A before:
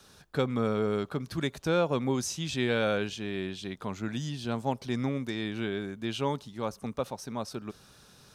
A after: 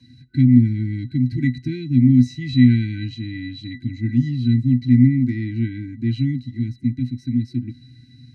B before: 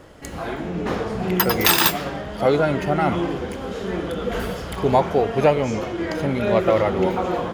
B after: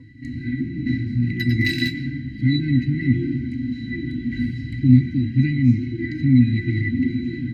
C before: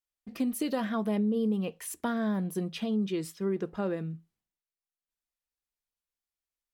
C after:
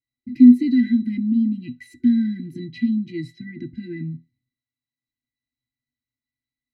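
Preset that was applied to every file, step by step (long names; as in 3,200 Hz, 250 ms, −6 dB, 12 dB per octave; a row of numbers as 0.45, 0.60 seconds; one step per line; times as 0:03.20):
brick-wall band-stop 360–1,500 Hz
resonances in every octave B, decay 0.13 s
normalise the peak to −2 dBFS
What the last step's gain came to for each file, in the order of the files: +22.5, +15.5, +23.0 decibels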